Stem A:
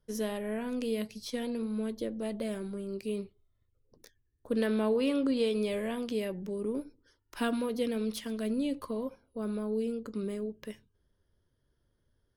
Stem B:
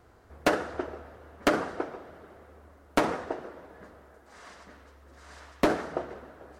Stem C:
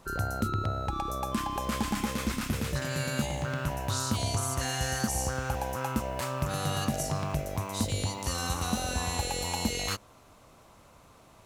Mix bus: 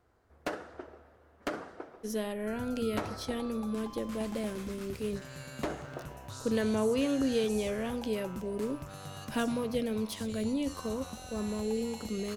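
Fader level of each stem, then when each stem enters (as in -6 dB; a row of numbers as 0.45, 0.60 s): -0.5, -11.5, -13.5 dB; 1.95, 0.00, 2.40 s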